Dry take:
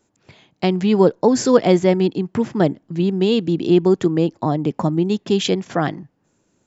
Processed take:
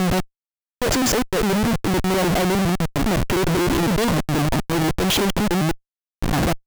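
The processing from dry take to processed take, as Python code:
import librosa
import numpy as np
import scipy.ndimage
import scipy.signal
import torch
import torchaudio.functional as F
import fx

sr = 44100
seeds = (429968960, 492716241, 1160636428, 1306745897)

y = fx.block_reorder(x, sr, ms=102.0, group=8)
y = fx.schmitt(y, sr, flips_db=-31.0)
y = fx.transient(y, sr, attack_db=-2, sustain_db=2)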